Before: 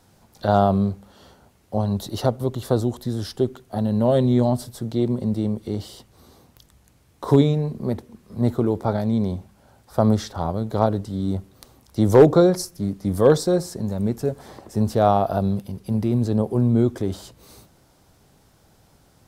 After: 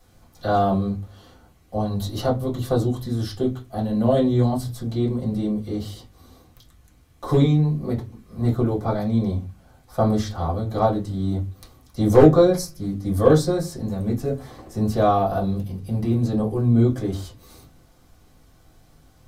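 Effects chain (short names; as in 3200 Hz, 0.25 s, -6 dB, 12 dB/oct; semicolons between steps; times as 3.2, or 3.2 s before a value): high shelf 10000 Hz +8.5 dB; reverb, pre-delay 4 ms, DRR -4.5 dB; gain -8 dB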